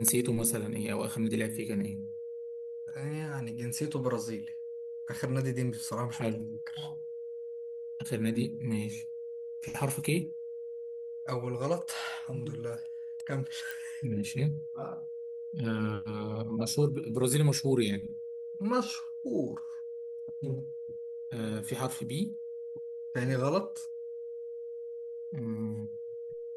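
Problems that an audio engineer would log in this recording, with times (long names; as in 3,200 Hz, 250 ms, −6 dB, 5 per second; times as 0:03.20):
whistle 470 Hz −38 dBFS
0:13.71: click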